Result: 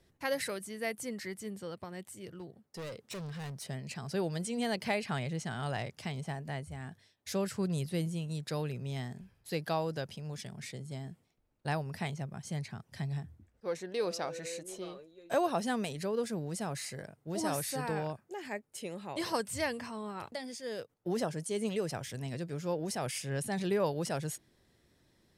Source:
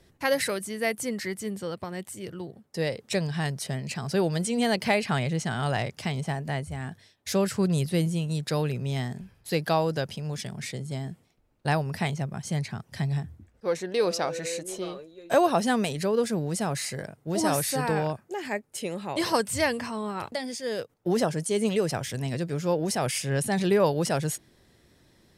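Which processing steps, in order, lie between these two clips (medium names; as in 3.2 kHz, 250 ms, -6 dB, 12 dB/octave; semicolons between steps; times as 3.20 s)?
2.27–3.67 s: hard clipper -30.5 dBFS, distortion -21 dB; trim -8.5 dB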